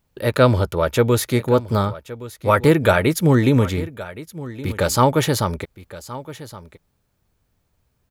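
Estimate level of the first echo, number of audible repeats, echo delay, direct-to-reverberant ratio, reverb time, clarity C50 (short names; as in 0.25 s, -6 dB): -16.5 dB, 1, 1.119 s, none, none, none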